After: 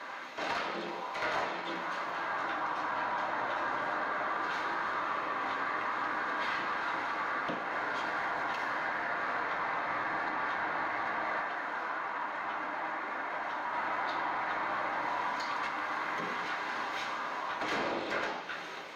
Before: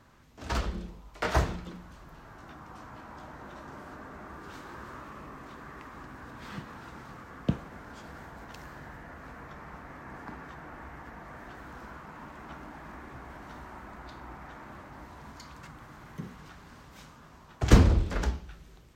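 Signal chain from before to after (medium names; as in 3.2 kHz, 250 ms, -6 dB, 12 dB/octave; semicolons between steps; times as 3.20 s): high-pass 520 Hz 12 dB/octave; compression 3:1, threshold -51 dBFS, peak gain reduction 20 dB; 11.40–13.73 s: flange 1 Hz, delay 0.9 ms, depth 6.1 ms, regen +67%; overdrive pedal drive 24 dB, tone 1.6 kHz, clips at -29 dBFS; reverberation RT60 1.1 s, pre-delay 3 ms, DRR -0.5 dB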